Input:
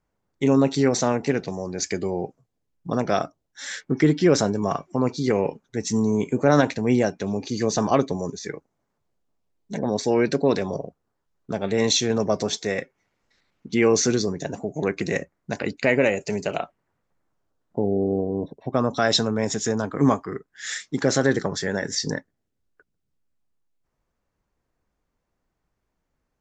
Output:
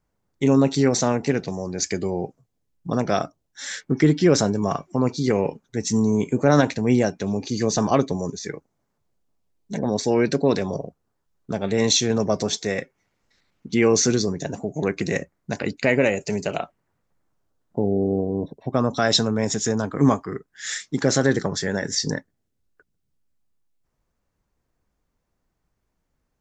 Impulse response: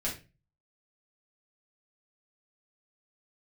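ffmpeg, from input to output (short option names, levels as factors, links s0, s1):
-af "bass=f=250:g=3,treble=f=4000:g=3"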